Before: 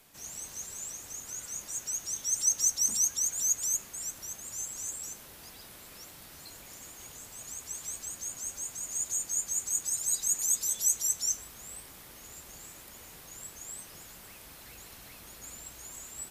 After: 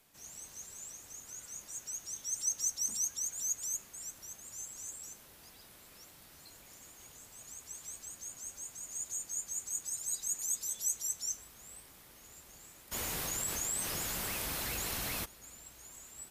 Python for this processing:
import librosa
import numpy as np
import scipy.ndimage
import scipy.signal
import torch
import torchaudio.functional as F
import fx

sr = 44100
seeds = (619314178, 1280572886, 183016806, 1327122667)

y = fx.env_flatten(x, sr, amount_pct=70, at=(12.91, 15.24), fade=0.02)
y = y * librosa.db_to_amplitude(-7.0)